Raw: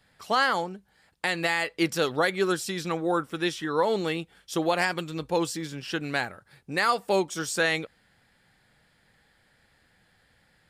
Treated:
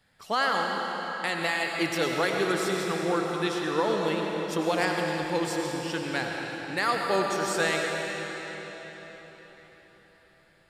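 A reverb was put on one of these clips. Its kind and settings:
comb and all-pass reverb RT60 4.6 s, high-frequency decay 0.9×, pre-delay 55 ms, DRR 0 dB
level −3 dB

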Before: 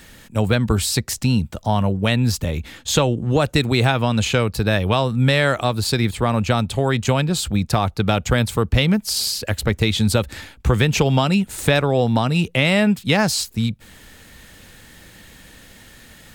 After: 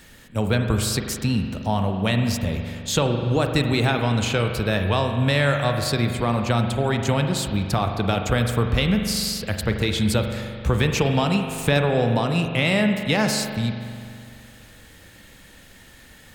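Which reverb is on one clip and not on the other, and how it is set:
spring reverb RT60 2.3 s, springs 42 ms, chirp 70 ms, DRR 4.5 dB
level −4 dB

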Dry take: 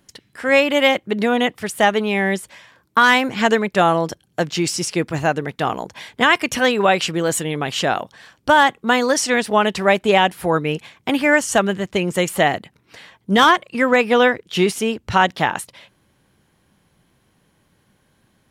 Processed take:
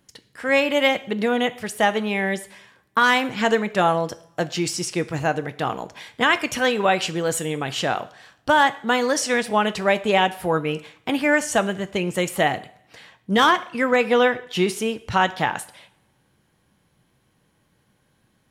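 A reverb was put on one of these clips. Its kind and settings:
coupled-rooms reverb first 0.54 s, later 1.7 s, from −24 dB, DRR 11.5 dB
level −4 dB

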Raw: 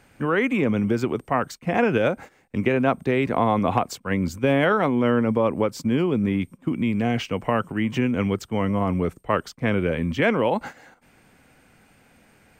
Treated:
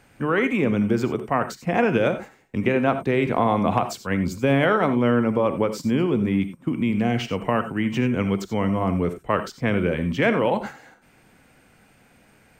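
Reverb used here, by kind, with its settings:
reverb whose tail is shaped and stops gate 110 ms rising, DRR 10 dB

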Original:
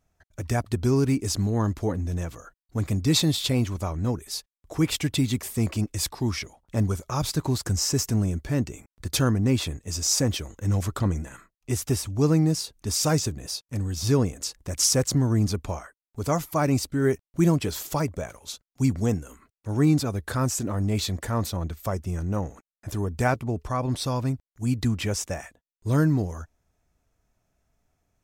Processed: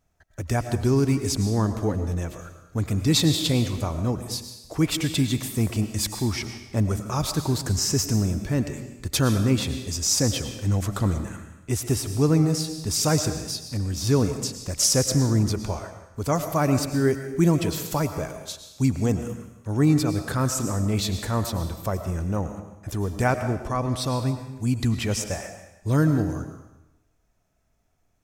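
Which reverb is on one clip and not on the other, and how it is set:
comb and all-pass reverb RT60 0.93 s, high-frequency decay 1×, pre-delay 70 ms, DRR 8 dB
level +1 dB

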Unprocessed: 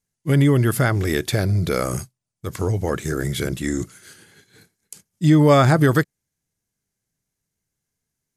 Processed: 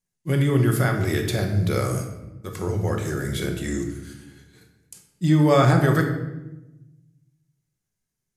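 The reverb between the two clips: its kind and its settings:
rectangular room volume 450 cubic metres, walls mixed, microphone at 1 metre
level −5 dB

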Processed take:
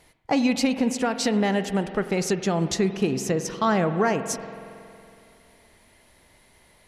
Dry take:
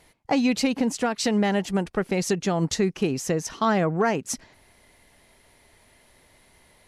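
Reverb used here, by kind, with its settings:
spring reverb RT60 2.7 s, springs 46 ms, chirp 75 ms, DRR 10 dB

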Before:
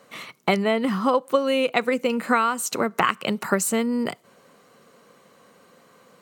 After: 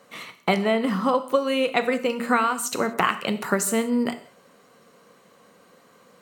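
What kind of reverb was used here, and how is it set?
reverb whose tail is shaped and stops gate 210 ms falling, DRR 8.5 dB
level −1 dB

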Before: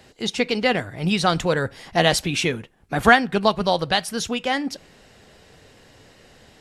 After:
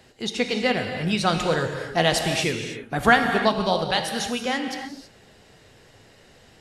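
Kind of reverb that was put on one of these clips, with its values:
reverb whose tail is shaped and stops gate 350 ms flat, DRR 4.5 dB
level −3 dB

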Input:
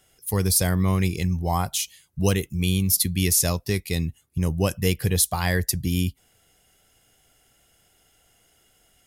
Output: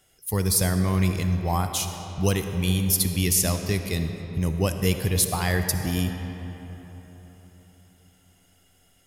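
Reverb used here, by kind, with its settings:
comb and all-pass reverb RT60 4.1 s, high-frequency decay 0.55×, pre-delay 20 ms, DRR 6.5 dB
level −1.5 dB

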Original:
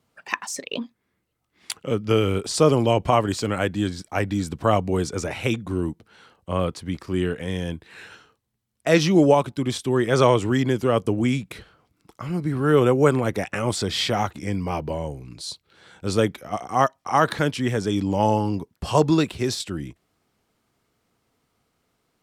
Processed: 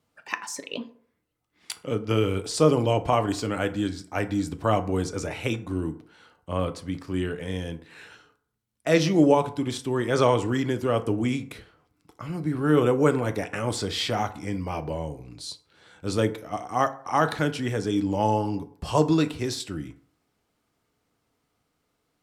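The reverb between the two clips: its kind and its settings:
feedback delay network reverb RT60 0.57 s, low-frequency decay 0.8×, high-frequency decay 0.5×, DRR 8.5 dB
level −4 dB

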